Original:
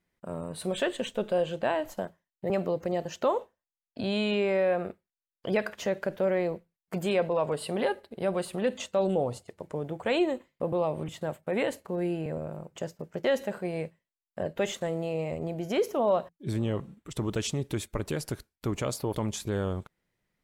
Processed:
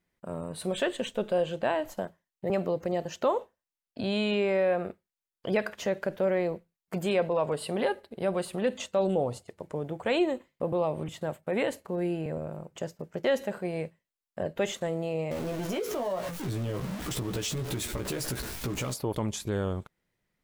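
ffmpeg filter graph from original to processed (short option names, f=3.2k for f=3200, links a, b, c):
-filter_complex "[0:a]asettb=1/sr,asplit=3[a][b][c];[a]atrim=end=15.314[d];[b]atrim=start=15.31:end=18.94,asetpts=PTS-STARTPTS,afade=t=in:d=0.004:c=qsin,afade=t=out:st=3.626:d=0.004:c=qsin,aeval=exprs='val(0)+0.5*0.0251*sgn(val(0))':c=same,asplit=2[e][f];[f]adelay=16,volume=-4dB[g];[e][g]amix=inputs=2:normalize=0,atrim=end_sample=160083,acompressor=threshold=-29dB:ratio=4:attack=3.2:release=140:knee=1:detection=peak[h];[c]atrim=start=18.936[i];[d][h]acrossfade=d=0.004:c1=hsin:c2=qsin[j];[j][i]acrossfade=d=0.004:c1=qsin:c2=hsin"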